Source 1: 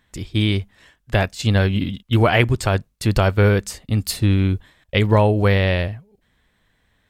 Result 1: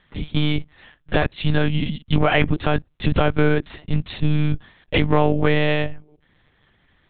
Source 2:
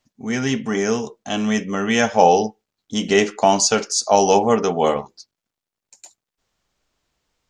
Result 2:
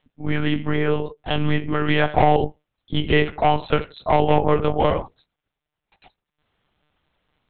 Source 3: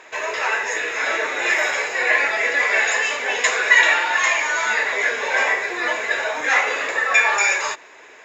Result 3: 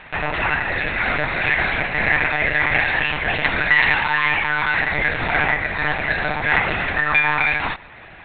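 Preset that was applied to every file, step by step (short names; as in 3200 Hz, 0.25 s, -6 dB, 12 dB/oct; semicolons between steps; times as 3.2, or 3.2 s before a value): notch 360 Hz, Q 12; in parallel at +1 dB: compressor 10:1, threshold -23 dBFS; on the sum: hard clip -6.5 dBFS; monotone LPC vocoder at 8 kHz 150 Hz; gain -3 dB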